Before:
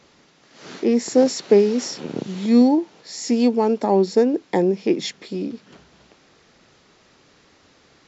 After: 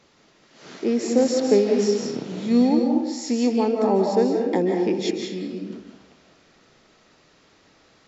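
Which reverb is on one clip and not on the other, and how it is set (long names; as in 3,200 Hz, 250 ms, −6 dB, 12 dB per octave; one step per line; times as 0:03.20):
comb and all-pass reverb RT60 1 s, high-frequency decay 0.6×, pre-delay 115 ms, DRR 1 dB
level −4 dB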